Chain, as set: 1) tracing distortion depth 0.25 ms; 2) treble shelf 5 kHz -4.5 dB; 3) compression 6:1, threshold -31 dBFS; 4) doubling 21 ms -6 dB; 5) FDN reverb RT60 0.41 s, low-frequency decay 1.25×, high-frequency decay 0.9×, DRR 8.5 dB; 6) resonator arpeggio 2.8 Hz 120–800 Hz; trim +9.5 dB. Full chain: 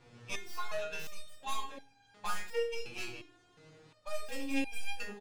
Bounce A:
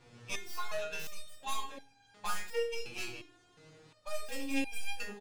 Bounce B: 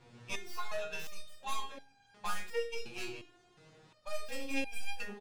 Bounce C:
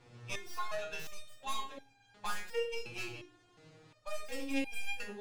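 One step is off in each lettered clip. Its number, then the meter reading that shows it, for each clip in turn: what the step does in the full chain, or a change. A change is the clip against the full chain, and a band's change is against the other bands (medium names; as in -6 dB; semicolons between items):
2, 8 kHz band +3.0 dB; 5, momentary loudness spread change -4 LU; 4, 125 Hz band +2.0 dB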